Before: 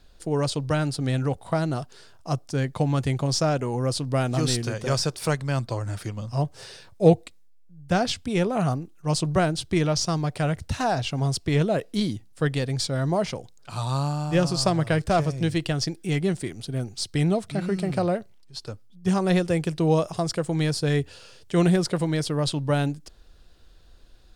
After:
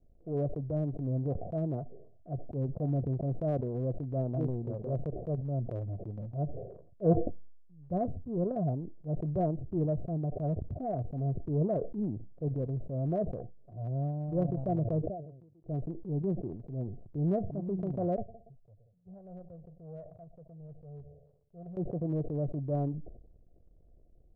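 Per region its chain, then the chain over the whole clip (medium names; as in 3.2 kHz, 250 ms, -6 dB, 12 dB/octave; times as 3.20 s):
15.02–15.64 s: inverted gate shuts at -29 dBFS, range -28 dB + bass shelf 83 Hz -11.5 dB
18.16–21.77 s: amplifier tone stack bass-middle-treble 10-0-10 + multi-head delay 60 ms, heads second and third, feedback 48%, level -23 dB
whole clip: Chebyshev low-pass 720 Hz, order 8; transient shaper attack -7 dB, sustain -11 dB; decay stretcher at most 62 dB/s; trim -5.5 dB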